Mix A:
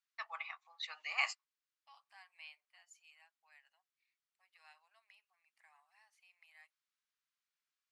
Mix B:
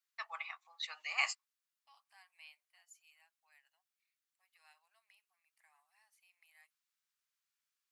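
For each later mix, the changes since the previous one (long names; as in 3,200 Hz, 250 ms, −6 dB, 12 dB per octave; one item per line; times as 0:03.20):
second voice −4.5 dB
master: remove high-frequency loss of the air 71 metres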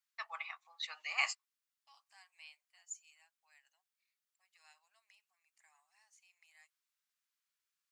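second voice: add low-pass with resonance 6,900 Hz, resonance Q 5.9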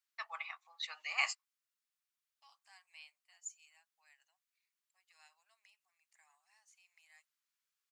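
second voice: entry +0.55 s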